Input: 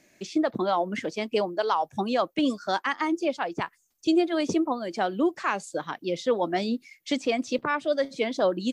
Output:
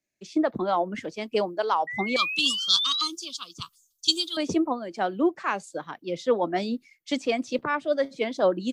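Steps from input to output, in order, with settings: 2.16–4.37 s: FFT filter 110 Hz 0 dB, 300 Hz -8 dB, 790 Hz -25 dB, 1.2 kHz +7 dB, 1.8 kHz -27 dB, 3.3 kHz +11 dB; 1.87–3.08 s: painted sound rise 1.9–4.2 kHz -31 dBFS; three bands expanded up and down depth 70%

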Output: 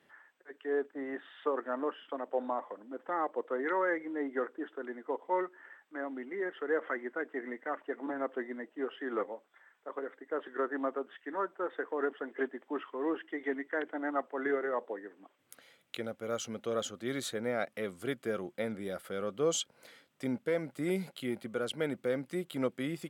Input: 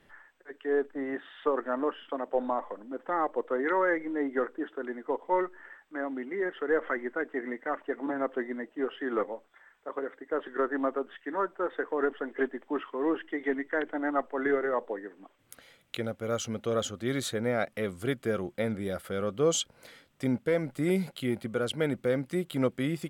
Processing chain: Bessel high-pass 190 Hz, order 2; trim -4 dB

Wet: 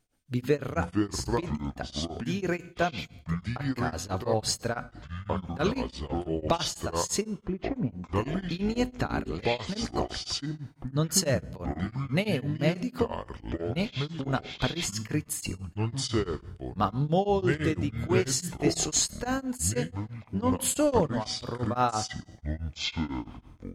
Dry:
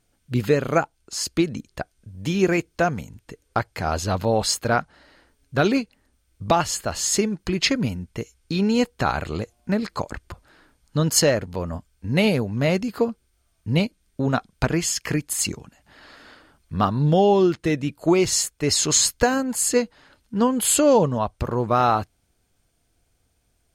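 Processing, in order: 7.21–8.15 s: low-pass 1.1 kHz 12 dB/octave; feedback comb 250 Hz, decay 0.54 s, harmonics all, mix 50%; simulated room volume 4000 m³, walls furnished, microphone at 0.38 m; ever faster or slower copies 259 ms, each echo -6 st, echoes 2; tremolo of two beating tones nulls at 6 Hz

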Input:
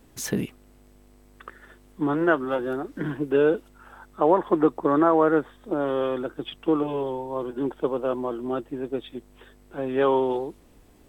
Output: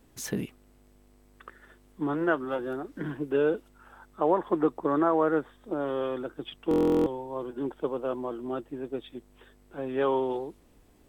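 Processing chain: buffer glitch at 6.69 s, samples 1024, times 15; trim -5 dB

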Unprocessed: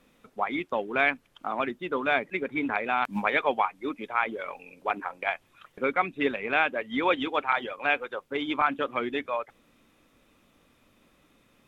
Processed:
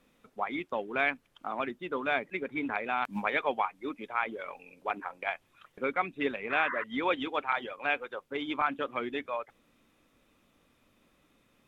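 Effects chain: painted sound noise, 6.50–6.84 s, 950–2100 Hz -31 dBFS; trim -4.5 dB

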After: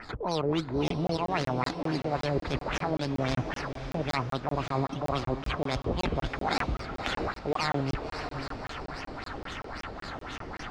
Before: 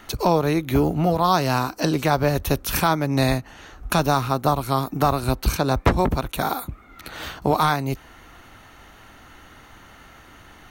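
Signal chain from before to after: reverse; compression 10:1, threshold -33 dBFS, peak gain reduction 21.5 dB; reverse; decimation with a swept rate 12×, swing 60% 2.5 Hz; LFO low-pass sine 3.7 Hz 430–5200 Hz; transient shaper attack -5 dB, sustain +1 dB; on a send: echo that smears into a reverb 574 ms, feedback 46%, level -10 dB; on the sum: crackling interface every 0.19 s, samples 1024, zero, from 0.88 s; trim +7 dB

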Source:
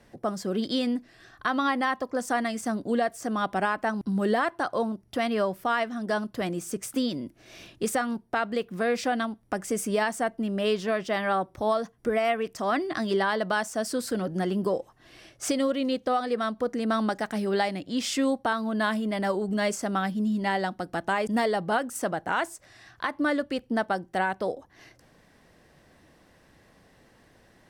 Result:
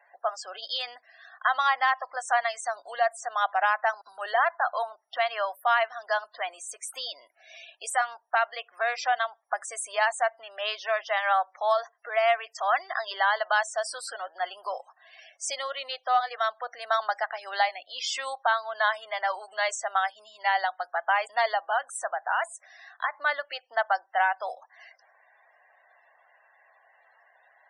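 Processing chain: 21.57–23.14 s: compression 1.5:1, threshold -30 dBFS, peak gain reduction 3.5 dB; loudest bins only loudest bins 64; elliptic high-pass 690 Hz, stop band 80 dB; trim +4 dB

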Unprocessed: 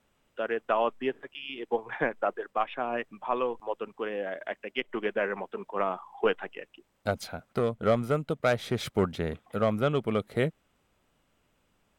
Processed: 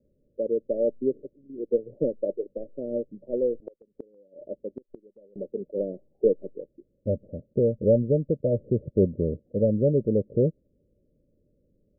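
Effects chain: Chebyshev low-pass 590 Hz, order 8; 3.57–5.36 s: inverted gate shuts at -29 dBFS, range -28 dB; trim +6 dB

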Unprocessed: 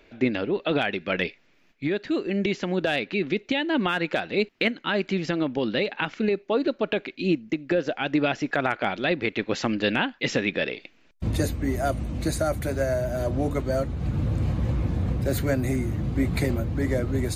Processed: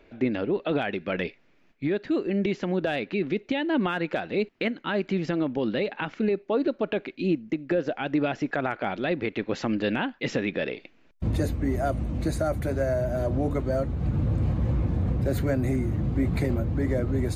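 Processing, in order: treble shelf 2.1 kHz -9 dB; in parallel at +1 dB: peak limiter -19.5 dBFS, peak gain reduction 8.5 dB; on the sum: trim -5.5 dB

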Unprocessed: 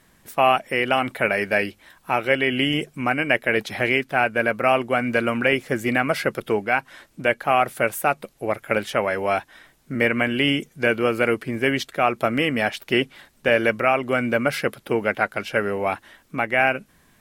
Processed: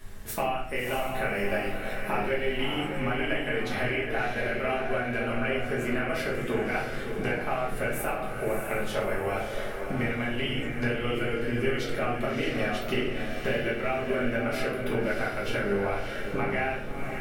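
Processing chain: compression 10:1, threshold -33 dBFS, peak gain reduction 20.5 dB; added noise brown -54 dBFS; on a send: echo that smears into a reverb 636 ms, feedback 40%, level -5 dB; on the sum: simulated room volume 85 m³, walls mixed, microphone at 1.4 m

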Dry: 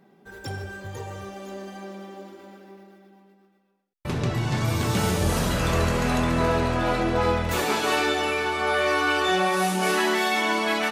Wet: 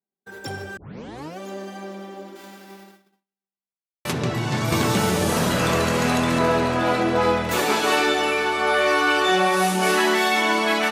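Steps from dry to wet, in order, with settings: 2.35–4.11 s: formants flattened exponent 0.6; gate -49 dBFS, range -41 dB; 0.77 s: tape start 0.62 s; high-pass 140 Hz 12 dB/octave; 4.72–6.39 s: three bands compressed up and down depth 100%; trim +3.5 dB

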